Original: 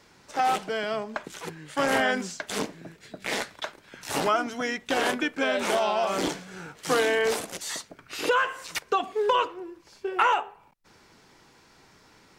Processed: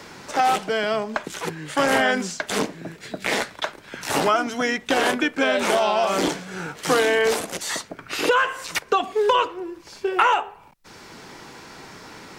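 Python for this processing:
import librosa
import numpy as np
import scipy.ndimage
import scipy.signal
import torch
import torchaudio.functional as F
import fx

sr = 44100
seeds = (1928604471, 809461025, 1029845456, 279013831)

y = fx.band_squash(x, sr, depth_pct=40)
y = y * 10.0 ** (5.0 / 20.0)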